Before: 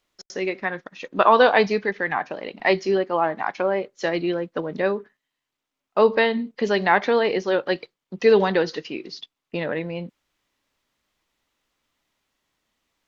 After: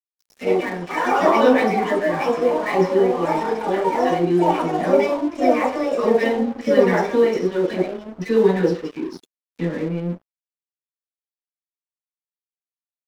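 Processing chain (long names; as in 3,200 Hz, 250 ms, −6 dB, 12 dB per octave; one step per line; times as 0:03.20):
flat-topped bell 1,300 Hz −12 dB 2.9 octaves
multiband delay without the direct sound highs, lows 50 ms, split 960 Hz
delay with pitch and tempo change per echo 89 ms, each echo +4 semitones, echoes 3
convolution reverb RT60 0.45 s, pre-delay 3 ms, DRR −10.5 dB
dead-zone distortion −29.5 dBFS
level −7.5 dB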